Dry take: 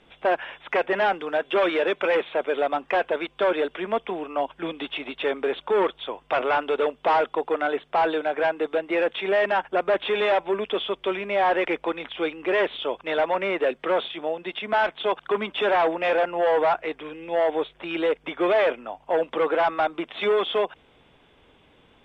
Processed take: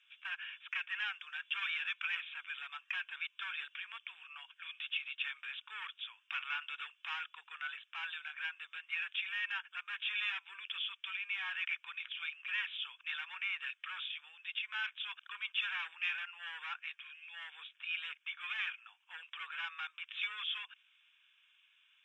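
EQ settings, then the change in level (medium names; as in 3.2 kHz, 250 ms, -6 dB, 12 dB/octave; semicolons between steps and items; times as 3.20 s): ladder high-pass 1.9 kHz, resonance 70%; static phaser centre 3 kHz, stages 8; +2.5 dB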